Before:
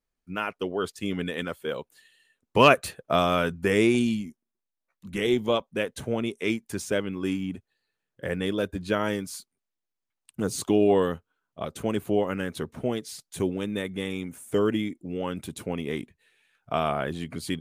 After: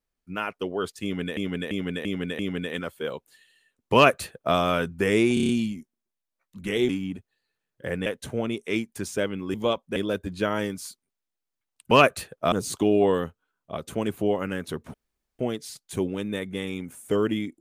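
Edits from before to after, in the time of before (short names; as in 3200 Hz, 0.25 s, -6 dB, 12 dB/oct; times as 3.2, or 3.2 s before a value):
1.03–1.37 loop, 5 plays
2.58–3.19 copy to 10.4
3.98 stutter 0.03 s, 6 plays
5.38–5.8 swap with 7.28–8.45
12.82 insert room tone 0.45 s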